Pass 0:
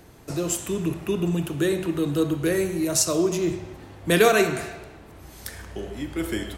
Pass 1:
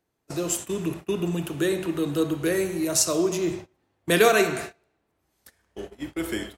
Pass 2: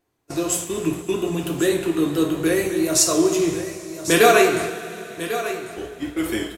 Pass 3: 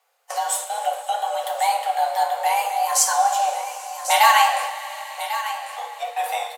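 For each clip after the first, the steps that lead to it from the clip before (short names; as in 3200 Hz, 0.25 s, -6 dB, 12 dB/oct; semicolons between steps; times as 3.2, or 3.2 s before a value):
gate -32 dBFS, range -26 dB; low shelf 140 Hz -9 dB
vibrato 4.3 Hz 42 cents; echo 1.096 s -12 dB; two-slope reverb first 0.36 s, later 4.1 s, from -18 dB, DRR 1.5 dB; gain +2.5 dB
frequency shift +420 Hz; mismatched tape noise reduction encoder only; gain -1 dB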